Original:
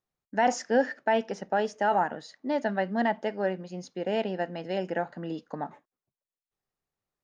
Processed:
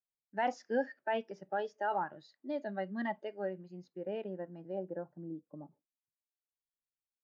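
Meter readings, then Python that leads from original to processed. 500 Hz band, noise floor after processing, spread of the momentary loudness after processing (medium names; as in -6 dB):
-9.0 dB, under -85 dBFS, 12 LU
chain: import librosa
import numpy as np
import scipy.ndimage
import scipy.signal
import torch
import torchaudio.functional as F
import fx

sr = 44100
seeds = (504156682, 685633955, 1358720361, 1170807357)

y = fx.noise_reduce_blind(x, sr, reduce_db=12)
y = fx.filter_sweep_lowpass(y, sr, from_hz=3200.0, to_hz=120.0, start_s=3.52, end_s=7.11, q=1.0)
y = y * 10.0 ** (-8.5 / 20.0)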